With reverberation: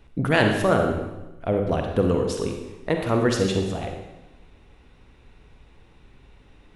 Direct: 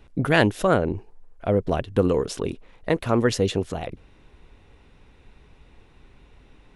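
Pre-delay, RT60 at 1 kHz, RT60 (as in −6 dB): 39 ms, 1.0 s, 1.0 s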